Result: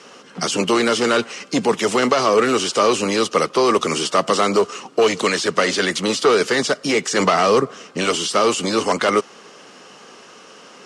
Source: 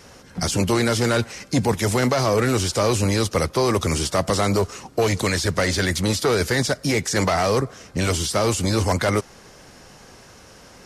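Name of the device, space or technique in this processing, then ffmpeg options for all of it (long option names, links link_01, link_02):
television speaker: -filter_complex "[0:a]highpass=frequency=190:width=0.5412,highpass=frequency=190:width=1.3066,equalizer=frequency=430:width_type=q:width=4:gain=5,equalizer=frequency=1200:width_type=q:width=4:gain=8,equalizer=frequency=2900:width_type=q:width=4:gain=9,lowpass=frequency=8900:width=0.5412,lowpass=frequency=8900:width=1.3066,asettb=1/sr,asplit=3[link_01][link_02][link_03];[link_01]atrim=end=7.204[link_04];[link_02]atrim=start=7.2:end=7.84,asetpts=PTS-STARTPTS,afade=type=in:duration=0.004:curve=qsin,afade=type=out:start_time=0.636:duration=0.004:curve=qsin,lowshelf=frequency=180:gain=8[link_05];[link_03]atrim=start=7.836[link_06];[link_04][link_05]acrossfade=duration=0.004:curve1=hsin:curve2=qsin[link_07];[link_07][link_06]acrossfade=duration=0.004:curve1=qsin:curve2=hsin,volume=1.5dB"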